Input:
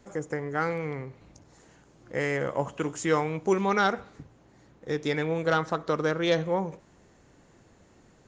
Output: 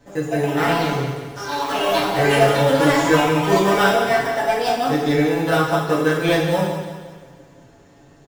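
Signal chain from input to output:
delay with pitch and tempo change per echo 202 ms, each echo +6 semitones, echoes 3
in parallel at −7.5 dB: decimation without filtering 20×
on the sum: comb filter 7.1 ms
repeating echo 178 ms, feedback 44%, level −10 dB
coupled-rooms reverb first 0.67 s, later 2.3 s, DRR −5 dB
level −1.5 dB

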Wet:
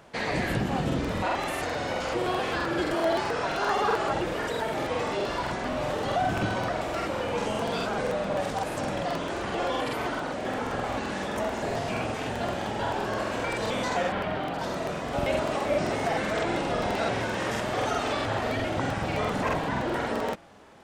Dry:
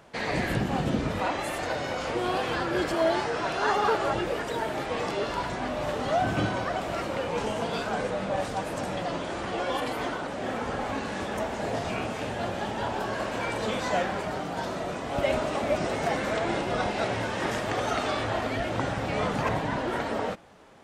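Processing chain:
0:14.12–0:14.54: high shelf with overshoot 4,700 Hz −11.5 dB, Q 1.5
in parallel at −3 dB: brickwall limiter −21.5 dBFS, peak gain reduction 8.5 dB
on the sum: regular buffer underruns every 0.13 s, samples 2,048, repeat, from 0:00.87
level −3.5 dB

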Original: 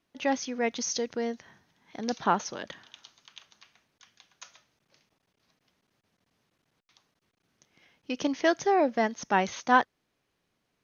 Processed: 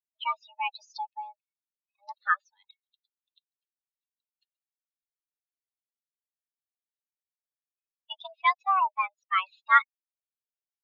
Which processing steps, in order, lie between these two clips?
spectral dynamics exaggerated over time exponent 3
single-sideband voice off tune +380 Hz 500–3,500 Hz
level +5.5 dB

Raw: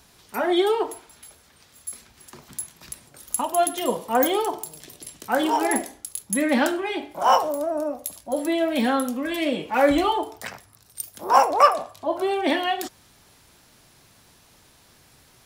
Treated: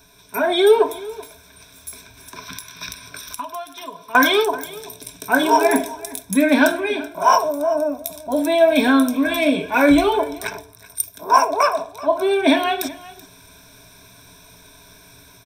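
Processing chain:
EQ curve with evenly spaced ripples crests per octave 1.6, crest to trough 15 dB
0:01.90–0:04.15: downward compressor 4 to 1, threshold −40 dBFS, peak gain reduction 23 dB
0:02.36–0:04.44: gain on a spectral selection 970–6,100 Hz +9 dB
automatic gain control gain up to 5.5 dB
single-tap delay 381 ms −19 dB

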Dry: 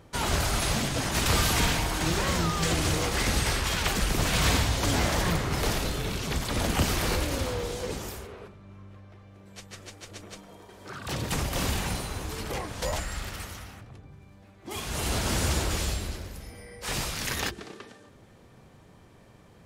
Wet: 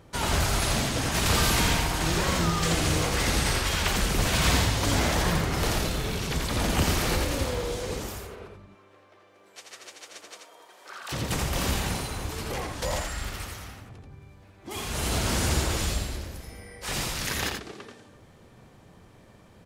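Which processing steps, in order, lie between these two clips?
0:08.65–0:11.11: high-pass filter 300 Hz → 760 Hz 12 dB per octave
single-tap delay 84 ms −4.5 dB

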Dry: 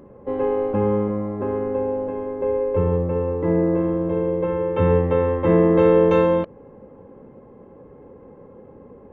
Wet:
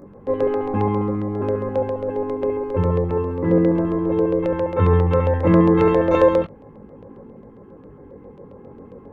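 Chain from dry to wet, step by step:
multi-voice chorus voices 2, 0.28 Hz, delay 20 ms, depth 1.9 ms
auto-filter notch square 7.4 Hz 580–3,000 Hz
level +6 dB

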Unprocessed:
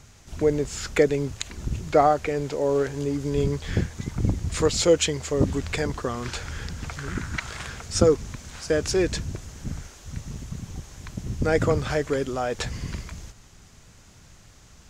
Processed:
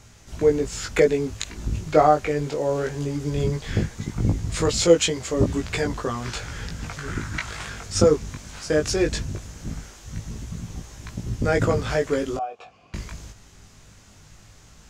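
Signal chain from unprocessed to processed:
0:12.37–0:12.94: formant filter a
chorus effect 0.18 Hz, delay 17.5 ms, depth 2.5 ms
level +4.5 dB

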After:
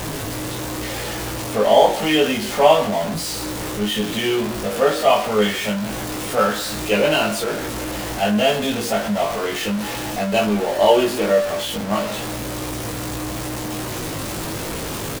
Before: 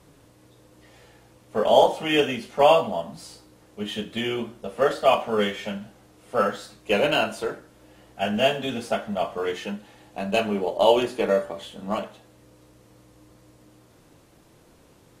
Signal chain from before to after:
converter with a step at zero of −23 dBFS
double-tracking delay 19 ms −3.5 dB

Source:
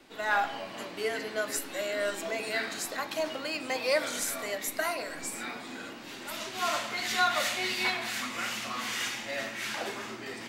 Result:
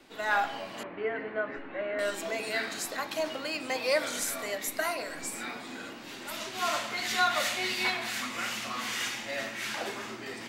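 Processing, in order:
0:00.83–0:01.99: low-pass filter 2,200 Hz 24 dB per octave

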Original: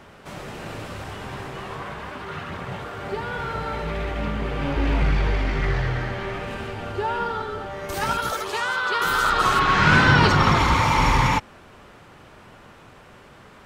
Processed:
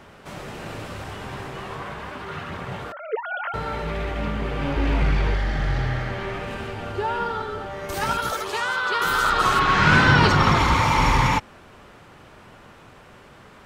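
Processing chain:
0:02.92–0:03.54: three sine waves on the formant tracks
0:05.37–0:06.03: healed spectral selection 230–2,900 Hz after

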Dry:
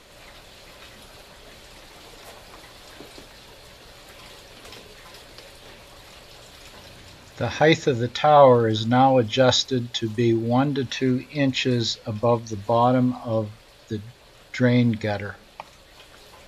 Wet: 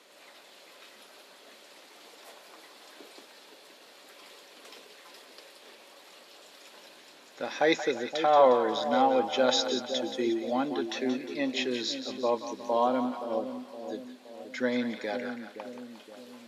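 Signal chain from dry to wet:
high-pass filter 250 Hz 24 dB per octave
on a send: echo with a time of its own for lows and highs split 660 Hz, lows 519 ms, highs 178 ms, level −8.5 dB
on the sum: level −7 dB

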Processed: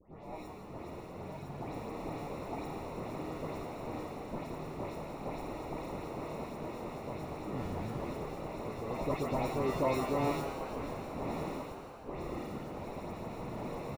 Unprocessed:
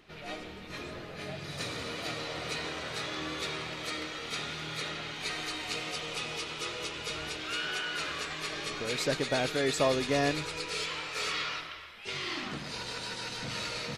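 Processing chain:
decimation without filtering 28×
high-shelf EQ 2,200 Hz −12 dB
all-pass dispersion highs, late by 141 ms, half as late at 2,500 Hz
on a send: echo with shifted repeats 168 ms, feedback 56%, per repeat +120 Hz, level −9 dB
on the sum: level −3 dB

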